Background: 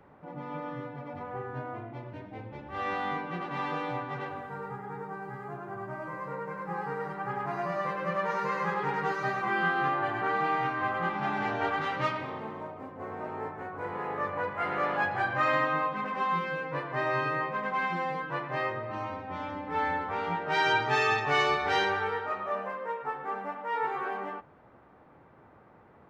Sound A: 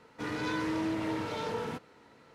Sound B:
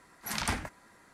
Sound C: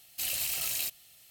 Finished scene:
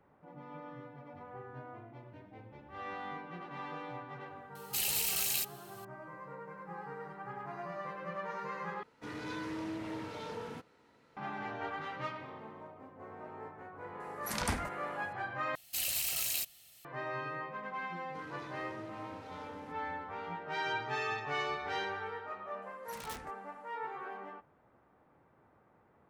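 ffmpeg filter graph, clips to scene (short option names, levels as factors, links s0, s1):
-filter_complex "[3:a]asplit=2[s0][s1];[1:a]asplit=2[s2][s3];[2:a]asplit=2[s4][s5];[0:a]volume=0.316[s6];[s4]equalizer=f=3100:w=0.44:g=-4[s7];[s5]aeval=exprs='(mod(17.8*val(0)+1,2)-1)/17.8':c=same[s8];[s6]asplit=3[s9][s10][s11];[s9]atrim=end=8.834[s12];[s2]atrim=end=2.34,asetpts=PTS-STARTPTS,volume=0.422[s13];[s10]atrim=start=11.166:end=15.554[s14];[s1]atrim=end=1.3,asetpts=PTS-STARTPTS,volume=0.794[s15];[s11]atrim=start=16.846[s16];[s0]atrim=end=1.3,asetpts=PTS-STARTPTS,volume=0.944,afade=t=in:d=0.004:c=hsin,afade=t=out:st=1.296:d=0.004:c=hsin,adelay=4550[s17];[s7]atrim=end=1.13,asetpts=PTS-STARTPTS,volume=0.891,afade=t=in:d=0.004:c=hsin,afade=t=out:st=1.126:d=0.004:c=hsin,adelay=14000[s18];[s3]atrim=end=2.34,asetpts=PTS-STARTPTS,volume=0.158,afade=t=in:d=0.004:c=hsin,afade=t=out:st=2.336:d=0.004:c=hsin,adelay=17950[s19];[s8]atrim=end=1.13,asetpts=PTS-STARTPTS,volume=0.224,afade=t=in:d=0.004:c=hsin,afade=t=out:st=1.126:d=0.004:c=hsin,adelay=22620[s20];[s12][s13]acrossfade=d=0.004:c1=hsin:c2=hsin[s21];[s21][s14]acrossfade=d=0.004:c1=hsin:c2=hsin[s22];[s22][s15]acrossfade=d=0.004:c1=hsin:c2=hsin[s23];[s23][s16]acrossfade=d=0.004:c1=hsin:c2=hsin[s24];[s24][s17][s18][s19][s20]amix=inputs=5:normalize=0"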